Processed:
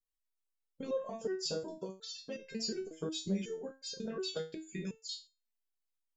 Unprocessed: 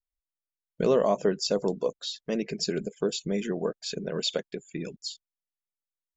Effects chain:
in parallel at +1 dB: brickwall limiter −22.5 dBFS, peak gain reduction 9 dB
on the sum: downward compressor, threshold −23 dBFS, peak gain reduction 8 dB
auto-filter notch sine 6.7 Hz 480–2,400 Hz
step-sequenced resonator 5.5 Hz 160–530 Hz
level +3.5 dB

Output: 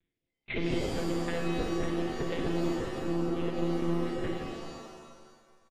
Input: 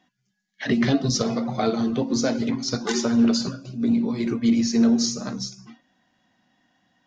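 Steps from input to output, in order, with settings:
lower of the sound and its delayed copy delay 4.7 ms
flat-topped bell 760 Hz −13.5 dB 1.1 octaves
leveller curve on the samples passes 2
downward compressor, threshold −21 dBFS, peak gain reduction 8 dB
ring modulation 31 Hz
speed change +24%
loudspeakers that aren't time-aligned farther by 18 metres −6 dB, 87 metres −12 dB
one-pitch LPC vocoder at 8 kHz 170 Hz
reverb with rising layers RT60 1.5 s, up +7 semitones, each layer −2 dB, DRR 4.5 dB
level −6.5 dB

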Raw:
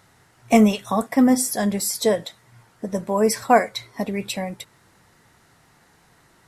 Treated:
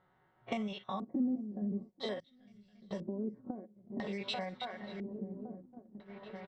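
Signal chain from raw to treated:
spectrum averaged block by block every 50 ms
low-shelf EQ 280 Hz −6.5 dB
comb filter 5.4 ms, depth 50%
on a send: feedback echo with a long and a short gap by turns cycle 1,114 ms, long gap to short 3 to 1, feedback 49%, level −17 dB
on the sum: downward compressor 6 to 1, threshold −37 dBFS, peak gain reduction 23.5 dB
auto-filter low-pass square 0.5 Hz 300–3,500 Hz
notch filter 2,500 Hz, Q 7.5
low-pass that shuts in the quiet parts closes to 1,000 Hz, open at −32 dBFS
noise gate −48 dBFS, range −10 dB
0:02.20–0:02.91: guitar amp tone stack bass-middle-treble 10-0-1

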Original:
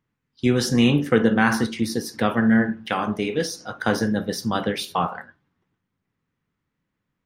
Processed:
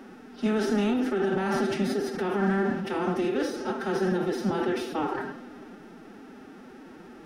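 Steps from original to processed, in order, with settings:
compressor on every frequency bin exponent 0.4
high-shelf EQ 2,000 Hz −10 dB
brickwall limiter −9 dBFS, peak gain reduction 7.5 dB
phase-vocoder pitch shift with formants kept +9.5 semitones
level −7 dB

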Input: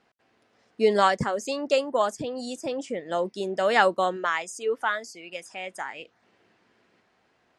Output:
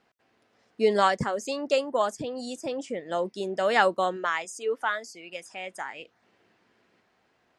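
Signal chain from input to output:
0:04.45–0:05.10: high-pass filter 190 Hz
level −1.5 dB

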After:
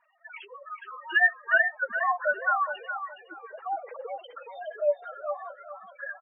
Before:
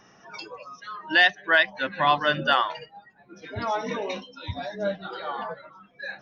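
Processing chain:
three sine waves on the formant tracks
gate on every frequency bin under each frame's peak −10 dB strong
flanger 0.5 Hz, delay 4 ms, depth 8.8 ms, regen +12%
on a send: repeating echo 416 ms, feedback 25%, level −9 dB

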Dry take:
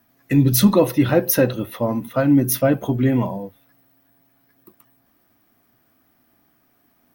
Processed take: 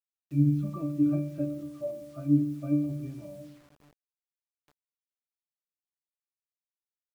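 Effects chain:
resonances in every octave D, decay 0.59 s
rectangular room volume 1,700 cubic metres, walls mixed, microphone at 0.32 metres
bit reduction 10 bits
level +1 dB

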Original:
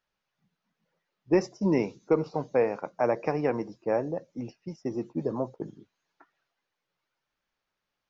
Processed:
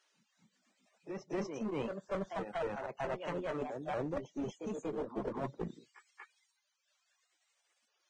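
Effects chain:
pitch shifter swept by a sawtooth +5.5 semitones, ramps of 1,313 ms
high-pass filter 120 Hz 24 dB per octave
high-shelf EQ 2,900 Hz +9.5 dB
reversed playback
downward compressor 12 to 1, threshold −36 dBFS, peak gain reduction 18.5 dB
reversed playback
treble cut that deepens with the level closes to 2,000 Hz, closed at −36 dBFS
reverb reduction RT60 1.6 s
backwards echo 238 ms −7.5 dB
asymmetric clip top −42.5 dBFS, bottom −30.5 dBFS
level +5 dB
Ogg Vorbis 16 kbit/s 22,050 Hz

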